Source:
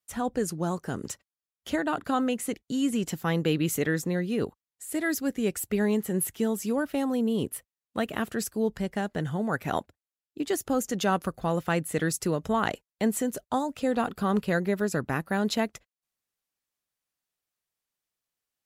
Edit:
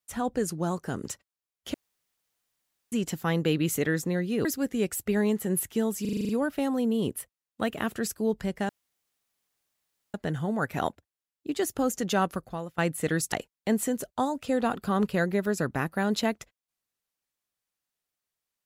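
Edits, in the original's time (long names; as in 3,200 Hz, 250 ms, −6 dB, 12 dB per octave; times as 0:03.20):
0:01.74–0:02.92: fill with room tone
0:04.45–0:05.09: remove
0:06.65: stutter 0.04 s, 8 plays
0:09.05: splice in room tone 1.45 s
0:11.14–0:11.69: fade out, to −20.5 dB
0:12.23–0:12.66: remove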